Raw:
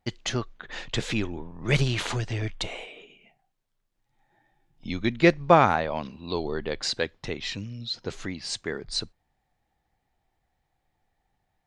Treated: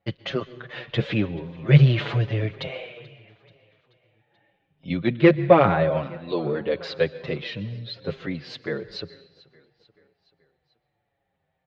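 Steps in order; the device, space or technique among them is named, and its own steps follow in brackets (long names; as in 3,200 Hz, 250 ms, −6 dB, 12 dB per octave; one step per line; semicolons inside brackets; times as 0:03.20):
repeating echo 433 ms, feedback 58%, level −23 dB
dynamic equaliser 180 Hz, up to +6 dB, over −37 dBFS, Q 0.74
dense smooth reverb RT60 0.93 s, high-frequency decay 0.9×, pre-delay 110 ms, DRR 18 dB
barber-pole flanger into a guitar amplifier (barber-pole flanger 6.7 ms −0.9 Hz; soft clipping −11 dBFS, distortion −18 dB; loudspeaker in its box 90–3,600 Hz, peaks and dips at 150 Hz +6 dB, 240 Hz −6 dB, 540 Hz +9 dB, 870 Hz −5 dB)
level +4 dB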